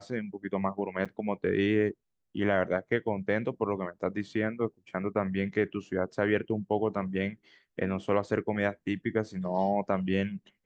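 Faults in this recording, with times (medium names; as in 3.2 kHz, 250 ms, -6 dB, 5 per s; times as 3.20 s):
1.05–1.06 s: dropout 5.9 ms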